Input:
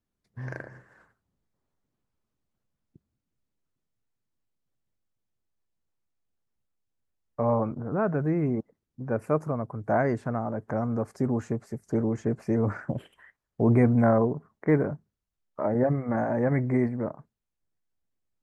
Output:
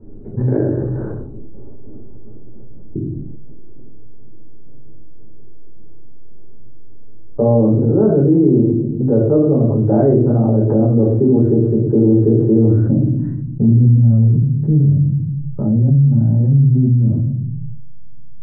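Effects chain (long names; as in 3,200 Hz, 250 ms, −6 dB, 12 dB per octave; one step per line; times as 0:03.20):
low-pass that shuts in the quiet parts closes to 1,500 Hz, open at −22.5 dBFS
parametric band 1,500 Hz +6 dB 0.2 octaves
low-pass filter sweep 400 Hz → 160 Hz, 0:12.47–0:13.96
rectangular room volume 320 cubic metres, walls furnished, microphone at 4.2 metres
envelope flattener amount 70%
level −4.5 dB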